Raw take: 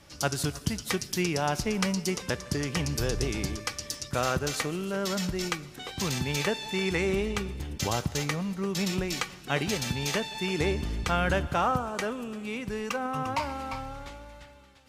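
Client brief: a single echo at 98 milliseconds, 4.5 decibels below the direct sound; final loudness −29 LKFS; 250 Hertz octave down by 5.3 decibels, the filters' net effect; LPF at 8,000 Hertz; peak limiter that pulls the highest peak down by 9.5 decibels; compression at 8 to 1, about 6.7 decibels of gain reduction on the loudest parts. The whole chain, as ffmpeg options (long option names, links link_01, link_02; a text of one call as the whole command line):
ffmpeg -i in.wav -af "lowpass=8000,equalizer=frequency=250:width_type=o:gain=-8.5,acompressor=threshold=-30dB:ratio=8,alimiter=level_in=2dB:limit=-24dB:level=0:latency=1,volume=-2dB,aecho=1:1:98:0.596,volume=6.5dB" out.wav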